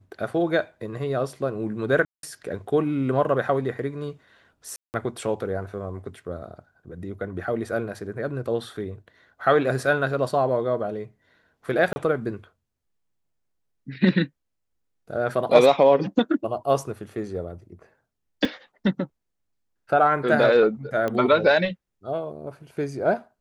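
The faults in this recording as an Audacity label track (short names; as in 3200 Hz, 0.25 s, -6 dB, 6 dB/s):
2.050000	2.230000	gap 0.182 s
4.760000	4.940000	gap 0.179 s
11.930000	11.960000	gap 30 ms
18.450000	18.450000	gap 2.3 ms
21.080000	21.080000	pop -15 dBFS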